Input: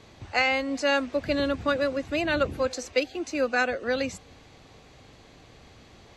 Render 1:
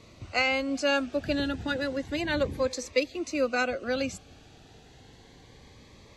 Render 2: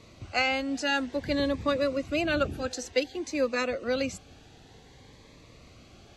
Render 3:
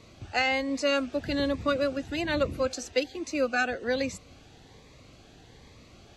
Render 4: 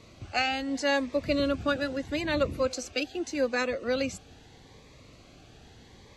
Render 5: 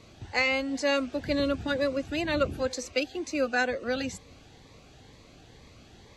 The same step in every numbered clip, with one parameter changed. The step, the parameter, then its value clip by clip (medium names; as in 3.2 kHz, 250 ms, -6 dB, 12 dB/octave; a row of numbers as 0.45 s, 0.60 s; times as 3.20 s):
Shepard-style phaser, rate: 0.31 Hz, 0.54 Hz, 1.2 Hz, 0.79 Hz, 2.1 Hz